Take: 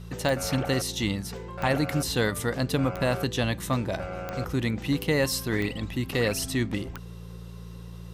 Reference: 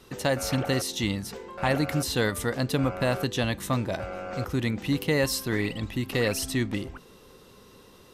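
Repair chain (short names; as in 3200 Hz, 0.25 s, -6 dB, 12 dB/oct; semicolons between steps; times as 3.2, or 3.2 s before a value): de-click; de-hum 57.5 Hz, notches 3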